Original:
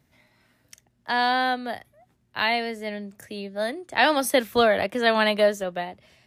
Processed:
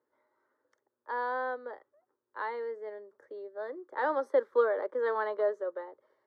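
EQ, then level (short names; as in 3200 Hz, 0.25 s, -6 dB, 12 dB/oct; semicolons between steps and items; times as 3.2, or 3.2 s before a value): ladder band-pass 670 Hz, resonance 30%; fixed phaser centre 700 Hz, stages 6; +8.0 dB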